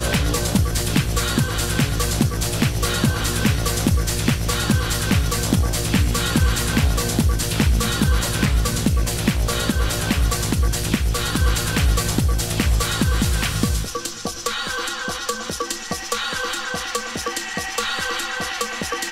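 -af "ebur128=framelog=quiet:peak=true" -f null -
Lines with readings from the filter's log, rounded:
Integrated loudness:
  I:         -21.0 LUFS
  Threshold: -31.0 LUFS
Loudness range:
  LRA:         4.7 LU
  Threshold: -40.9 LUFS
  LRA low:   -24.3 LUFS
  LRA high:  -19.6 LUFS
True peak:
  Peak:       -5.9 dBFS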